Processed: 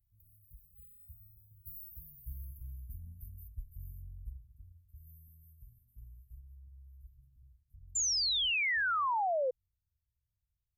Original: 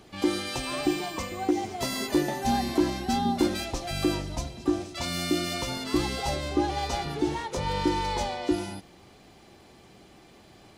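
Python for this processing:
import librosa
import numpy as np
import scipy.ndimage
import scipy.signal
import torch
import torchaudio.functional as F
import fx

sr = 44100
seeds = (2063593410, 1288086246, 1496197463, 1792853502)

y = fx.doppler_pass(x, sr, speed_mps=32, closest_m=29.0, pass_at_s=2.67)
y = scipy.signal.sosfilt(scipy.signal.cheby2(4, 60, [300.0, 6800.0], 'bandstop', fs=sr, output='sos'), y)
y = fx.high_shelf(y, sr, hz=6800.0, db=10.5)
y = fx.echo_wet_bandpass(y, sr, ms=109, feedback_pct=83, hz=640.0, wet_db=-11)
y = fx.spec_paint(y, sr, seeds[0], shape='fall', start_s=7.95, length_s=1.56, low_hz=490.0, high_hz=7400.0, level_db=-28.0)
y = y * 10.0 ** (-3.0 / 20.0)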